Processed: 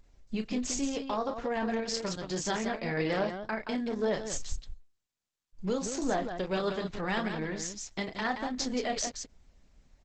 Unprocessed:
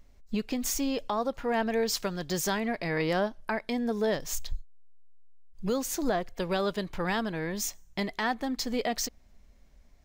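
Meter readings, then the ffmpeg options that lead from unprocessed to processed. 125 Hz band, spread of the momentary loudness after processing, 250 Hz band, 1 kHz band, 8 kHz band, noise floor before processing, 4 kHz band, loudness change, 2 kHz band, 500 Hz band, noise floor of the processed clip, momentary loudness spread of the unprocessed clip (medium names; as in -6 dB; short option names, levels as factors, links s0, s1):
-2.0 dB, 6 LU, -2.0 dB, -2.0 dB, -2.0 dB, -58 dBFS, -2.0 dB, -2.5 dB, -2.0 dB, -2.5 dB, -85 dBFS, 6 LU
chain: -filter_complex "[0:a]asplit=2[s0][s1];[s1]aecho=0:1:32.07|174.9:0.447|0.447[s2];[s0][s2]amix=inputs=2:normalize=0,volume=0.75" -ar 48000 -c:a libopus -b:a 10k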